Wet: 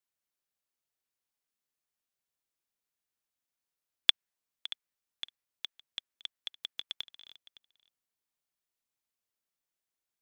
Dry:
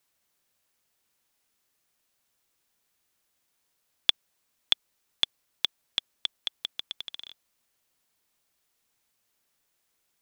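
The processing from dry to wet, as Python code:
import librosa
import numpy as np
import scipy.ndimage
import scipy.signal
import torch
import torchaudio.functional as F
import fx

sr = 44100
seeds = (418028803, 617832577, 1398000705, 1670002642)

p1 = fx.dynamic_eq(x, sr, hz=1800.0, q=1.4, threshold_db=-48.0, ratio=4.0, max_db=5)
p2 = fx.level_steps(p1, sr, step_db=18)
p3 = p2 + fx.echo_single(p2, sr, ms=562, db=-19.0, dry=0)
y = p3 * librosa.db_to_amplitude(-1.0)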